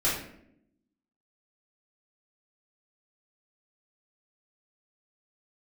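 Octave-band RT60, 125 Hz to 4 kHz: 0.95, 1.1, 0.85, 0.60, 0.60, 0.45 s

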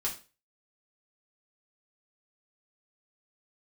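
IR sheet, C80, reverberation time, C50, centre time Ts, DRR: 16.5 dB, 0.35 s, 10.0 dB, 17 ms, -4.5 dB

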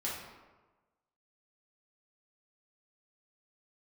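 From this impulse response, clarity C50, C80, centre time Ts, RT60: 1.5 dB, 4.5 dB, 65 ms, 1.2 s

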